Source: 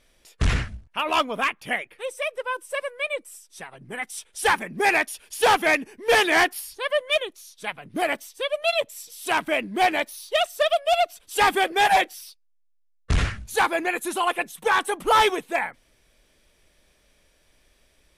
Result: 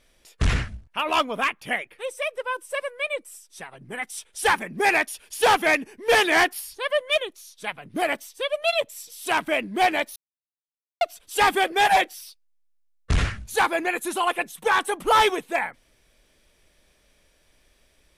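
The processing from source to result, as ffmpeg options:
-filter_complex "[0:a]asplit=3[s0][s1][s2];[s0]atrim=end=10.16,asetpts=PTS-STARTPTS,afade=t=out:st=10.156:d=0.004:c=hsin[s3];[s1]atrim=start=10.16:end=11.01,asetpts=PTS-STARTPTS,volume=0[s4];[s2]atrim=start=11.01,asetpts=PTS-STARTPTS,afade=t=in:d=0.004:c=hsin[s5];[s3][s4][s5]concat=n=3:v=0:a=1"

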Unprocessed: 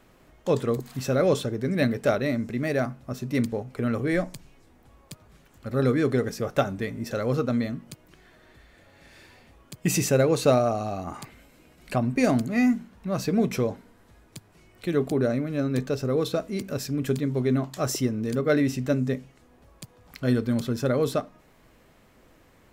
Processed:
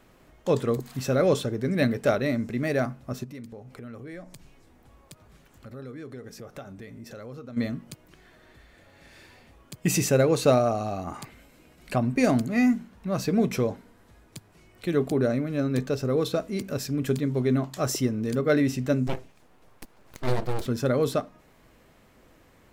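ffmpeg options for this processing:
-filter_complex "[0:a]asplit=3[s0][s1][s2];[s0]afade=t=out:st=3.23:d=0.02[s3];[s1]acompressor=threshold=0.00708:ratio=3:attack=3.2:release=140:knee=1:detection=peak,afade=t=in:st=3.23:d=0.02,afade=t=out:st=7.56:d=0.02[s4];[s2]afade=t=in:st=7.56:d=0.02[s5];[s3][s4][s5]amix=inputs=3:normalize=0,asettb=1/sr,asplit=3[s6][s7][s8];[s6]atrim=end=19.074[s9];[s7]atrim=start=19.07:end=20.66,asetpts=PTS-STARTPTS,afade=t=in:d=0.004:c=qsin,afade=t=out:st=1.586:d=0.004:c=qsin,aeval=exprs='abs(val(0))':c=same[s10];[s8]atrim=start=20.656[s11];[s9][s10]acrossfade=d=0.004:c1=hsin:c2=qsin[s12];[s12][s11]acrossfade=d=0.004:c1=qsin:c2=hsin"

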